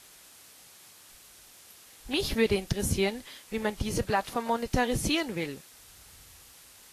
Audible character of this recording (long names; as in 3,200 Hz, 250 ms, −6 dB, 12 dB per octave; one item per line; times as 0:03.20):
a quantiser's noise floor 8 bits, dither triangular
Ogg Vorbis